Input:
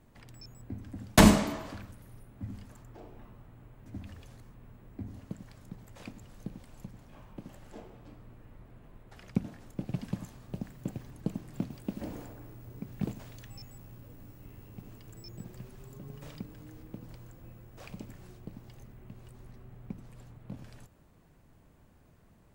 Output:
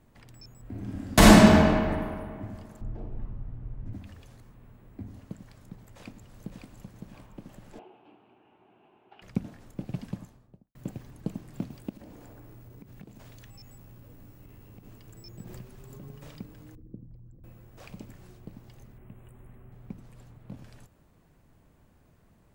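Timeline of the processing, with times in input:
0.61–1.57 s: reverb throw, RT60 2.1 s, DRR -6.5 dB
2.81–3.93 s: RIAA curve playback
5.77–6.70 s: echo throw 560 ms, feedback 45%, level -4.5 dB
7.79–9.22 s: cabinet simulation 360–3000 Hz, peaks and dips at 370 Hz +7 dB, 520 Hz -9 dB, 800 Hz +8 dB, 1.2 kHz -4 dB, 1.9 kHz -10 dB, 2.8 kHz +9 dB
9.96–10.75 s: studio fade out
11.89–14.85 s: compression, threshold -44 dBFS
15.47–16.13 s: swell ahead of each attack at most 23 dB/s
16.75–17.44 s: resonances exaggerated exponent 2
18.98–19.72 s: Butterworth band-stop 5.1 kHz, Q 0.97

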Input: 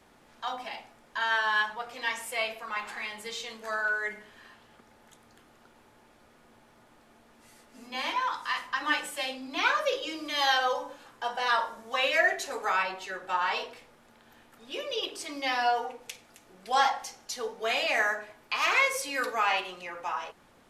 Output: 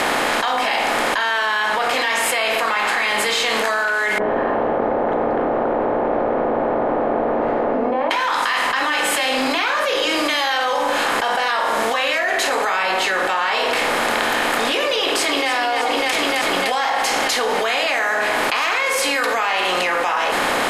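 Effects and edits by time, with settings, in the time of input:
4.18–8.11 s: four-pole ladder low-pass 700 Hz, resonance 35%
15.01–15.51 s: echo throw 300 ms, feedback 55%, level -3.5 dB
whole clip: spectral levelling over time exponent 0.6; band-stop 5.8 kHz, Q 13; level flattener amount 100%; trim -1 dB

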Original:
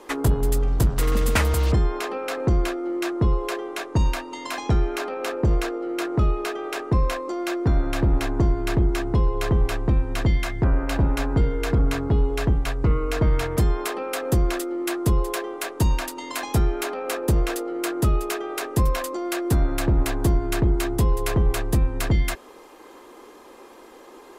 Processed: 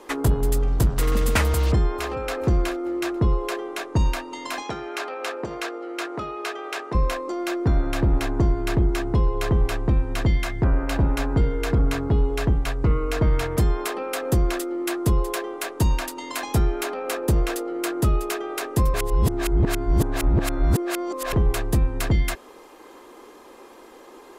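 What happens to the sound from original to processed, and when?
1.55–2.33 s: echo throw 430 ms, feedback 35%, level -17 dB
4.62–6.95 s: frequency weighting A
18.94–21.33 s: reverse

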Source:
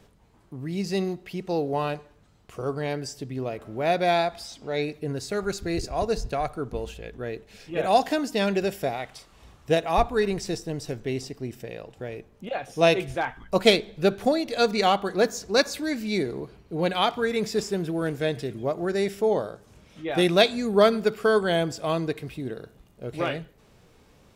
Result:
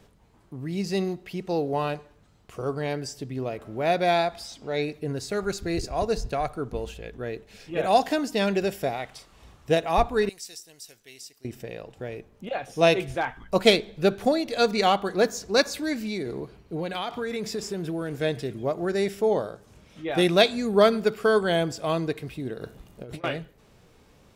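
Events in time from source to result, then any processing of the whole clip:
10.29–11.45 s: pre-emphasis filter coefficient 0.97
15.93–18.17 s: compression, threshold -26 dBFS
22.61–23.24 s: compressor with a negative ratio -40 dBFS

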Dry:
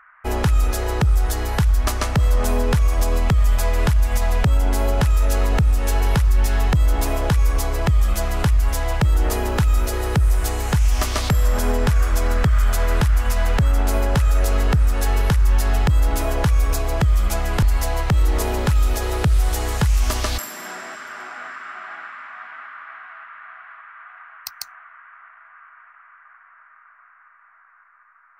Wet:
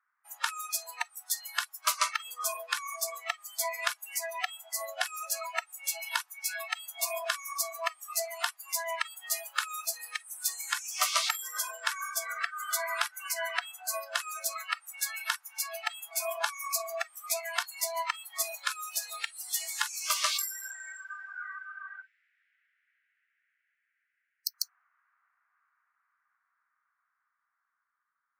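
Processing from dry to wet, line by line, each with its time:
22.02–24.54 s: inverse Chebyshev band-stop 510–1100 Hz, stop band 50 dB
whole clip: spectral noise reduction 29 dB; steep high-pass 690 Hz 72 dB/octave

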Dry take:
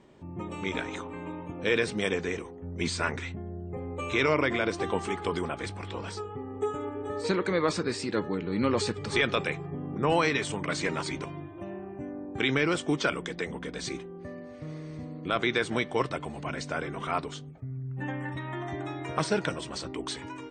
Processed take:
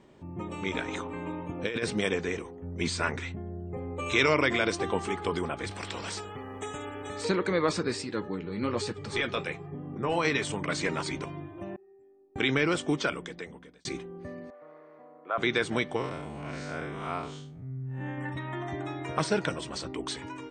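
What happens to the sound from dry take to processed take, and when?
0.88–2.01 s: compressor with a negative ratio -28 dBFS, ratio -0.5
4.06–4.78 s: treble shelf 2.9 kHz +8 dB
5.71–7.25 s: spectrum-flattening compressor 2:1
8.02–10.25 s: flange 1.1 Hz, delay 6 ms, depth 7.1 ms, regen -45%
11.76–12.36 s: inharmonic resonator 380 Hz, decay 0.65 s, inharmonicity 0.03
12.87–13.85 s: fade out linear
14.50–15.38 s: Butterworth band-pass 910 Hz, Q 0.96
15.96–18.18 s: spectral blur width 148 ms

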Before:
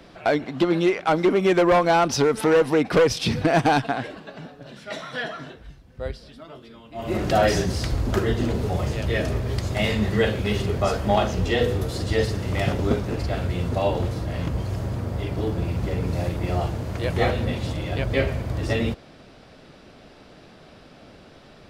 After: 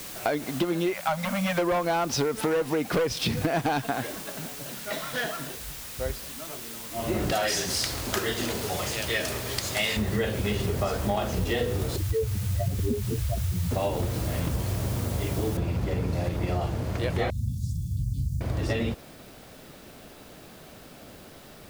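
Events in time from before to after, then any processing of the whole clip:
0.94–1.59 s: spectral selection erased 250–500 Hz
4.96–5.48 s: CVSD coder 32 kbps
7.32–9.97 s: tilt EQ +3.5 dB/octave
11.96–13.71 s: spectral contrast enhancement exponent 3.2
15.57 s: noise floor step -40 dB -55 dB
17.30–18.41 s: inverse Chebyshev band-stop 560–1900 Hz, stop band 70 dB
whole clip: compression, threshold -23 dBFS

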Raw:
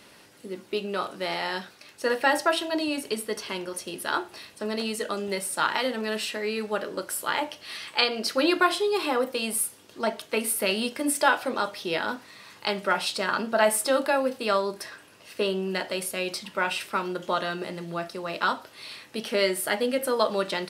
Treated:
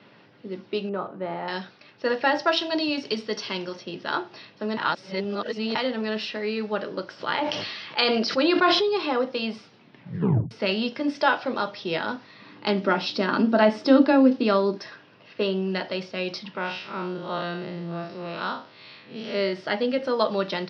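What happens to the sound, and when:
0.89–1.48 s: low-pass 1.2 kHz
2.47–3.76 s: treble shelf 3.8 kHz +10 dB
4.77–5.75 s: reverse
7.06–8.89 s: decay stretcher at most 29 dB/s
9.65 s: tape stop 0.86 s
12.41–14.78 s: peaking EQ 280 Hz +14 dB
16.57–19.53 s: spectral blur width 115 ms
whole clip: Chebyshev band-pass 110–5500 Hz, order 5; bass shelf 200 Hz +9 dB; level-controlled noise filter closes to 2.9 kHz, open at -23 dBFS

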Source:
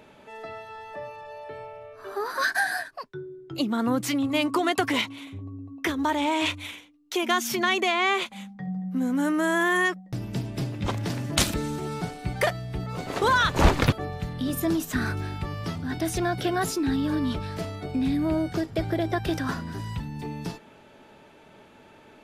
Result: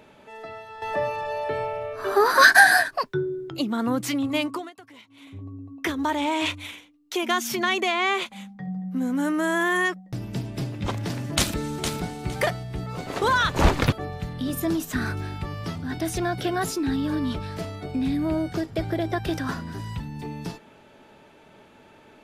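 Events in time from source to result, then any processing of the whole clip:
0.82–3.50 s: gain +11.5 dB
4.37–5.42 s: dip -23.5 dB, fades 0.34 s
11.37–12.17 s: echo throw 460 ms, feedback 20%, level -7 dB

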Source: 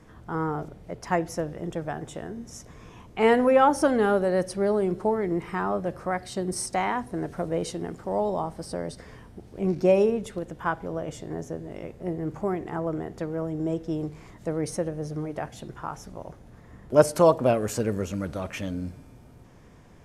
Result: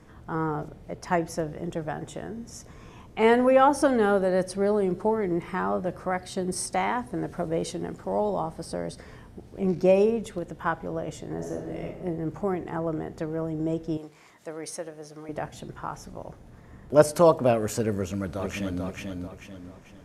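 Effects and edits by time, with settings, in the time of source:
11.36–11.85 s: reverb throw, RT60 0.94 s, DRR 0 dB
13.97–15.29 s: high-pass 1 kHz 6 dB/octave
17.95–18.83 s: echo throw 440 ms, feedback 40%, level -4 dB

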